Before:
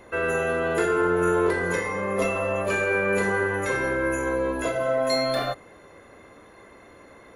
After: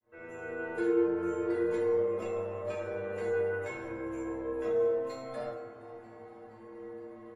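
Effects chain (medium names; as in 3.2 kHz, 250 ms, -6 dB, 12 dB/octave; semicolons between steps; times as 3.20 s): fade-in on the opening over 0.61 s; low-pass 1.6 kHz 6 dB/octave; in parallel at +1 dB: compression, threshold -34 dBFS, peak gain reduction 14.5 dB; on the sum: inharmonic resonator 110 Hz, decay 0.77 s, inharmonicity 0.008; frequency-shifting echo 470 ms, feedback 62%, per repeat +100 Hz, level -21 dB; reverberation RT60 1.7 s, pre-delay 3 ms, DRR 4.5 dB; trim +5 dB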